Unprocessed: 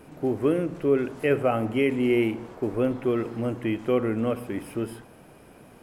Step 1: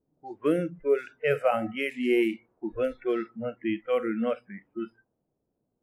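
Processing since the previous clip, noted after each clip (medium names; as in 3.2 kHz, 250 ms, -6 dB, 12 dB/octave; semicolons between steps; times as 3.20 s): level-controlled noise filter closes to 540 Hz, open at -18 dBFS; spectral noise reduction 28 dB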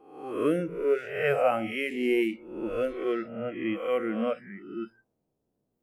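reverse spectral sustain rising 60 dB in 0.73 s; trim -2 dB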